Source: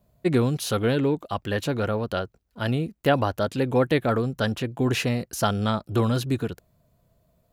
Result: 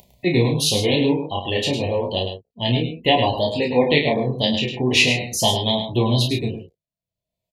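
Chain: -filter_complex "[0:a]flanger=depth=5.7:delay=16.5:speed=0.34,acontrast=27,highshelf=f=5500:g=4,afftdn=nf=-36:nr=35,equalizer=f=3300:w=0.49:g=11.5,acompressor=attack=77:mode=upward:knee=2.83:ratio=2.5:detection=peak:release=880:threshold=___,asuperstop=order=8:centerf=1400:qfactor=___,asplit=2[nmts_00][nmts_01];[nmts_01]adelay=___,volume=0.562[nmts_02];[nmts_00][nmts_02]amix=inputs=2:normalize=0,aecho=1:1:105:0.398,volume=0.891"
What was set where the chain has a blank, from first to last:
0.02, 1.5, 32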